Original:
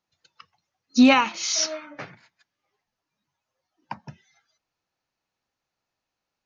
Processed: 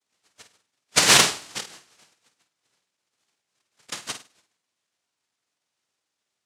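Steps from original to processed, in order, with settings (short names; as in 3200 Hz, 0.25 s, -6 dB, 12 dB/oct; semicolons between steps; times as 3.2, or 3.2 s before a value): inharmonic rescaling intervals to 114%; spectral gate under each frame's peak -25 dB strong; LPF 1300 Hz 12 dB/oct; in parallel at -3 dB: limiter -20.5 dBFS, peak gain reduction 11.5 dB; on the sum: negative-ratio compressor -17 dBFS, ratio -0.5; 1.6–3.92 flipped gate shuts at -36 dBFS, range -25 dB; noise vocoder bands 1; on a send: flutter echo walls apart 8.7 m, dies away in 0.31 s; on the sum: Doppler distortion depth 0.24 ms; gain +3.5 dB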